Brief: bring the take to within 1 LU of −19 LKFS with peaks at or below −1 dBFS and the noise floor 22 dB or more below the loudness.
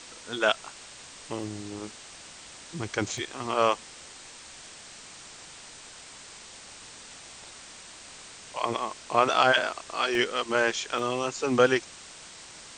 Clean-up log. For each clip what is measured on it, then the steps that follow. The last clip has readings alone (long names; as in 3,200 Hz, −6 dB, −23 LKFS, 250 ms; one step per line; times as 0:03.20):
number of dropouts 5; longest dropout 1.2 ms; background noise floor −47 dBFS; target noise floor −49 dBFS; integrated loudness −27.0 LKFS; sample peak −6.0 dBFS; target loudness −19.0 LKFS
→ repair the gap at 0:00.36/0:01.43/0:03.18/0:10.15/0:10.99, 1.2 ms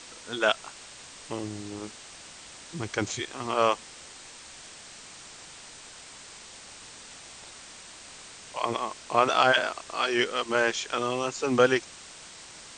number of dropouts 0; background noise floor −47 dBFS; target noise floor −49 dBFS
→ broadband denoise 6 dB, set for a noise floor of −47 dBFS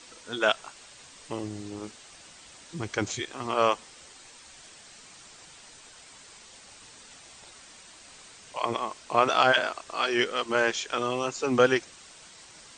background noise floor −51 dBFS; integrated loudness −27.0 LKFS; sample peak −6.0 dBFS; target loudness −19.0 LKFS
→ level +8 dB
brickwall limiter −1 dBFS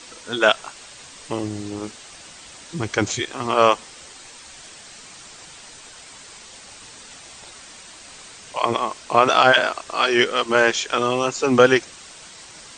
integrated loudness −19.5 LKFS; sample peak −1.0 dBFS; background noise floor −43 dBFS